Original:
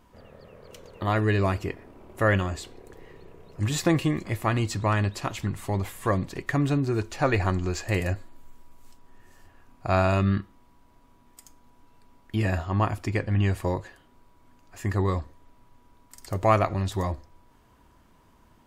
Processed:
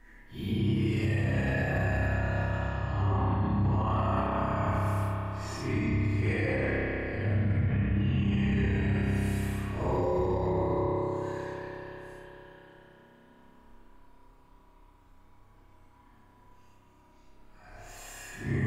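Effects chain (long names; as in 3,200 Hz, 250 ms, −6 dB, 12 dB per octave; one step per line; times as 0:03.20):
extreme stretch with random phases 7.2×, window 0.05 s, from 0:12.28
spring reverb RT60 3.9 s, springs 30 ms, chirp 45 ms, DRR −3 dB
brickwall limiter −15.5 dBFS, peak gain reduction 10 dB
level −4.5 dB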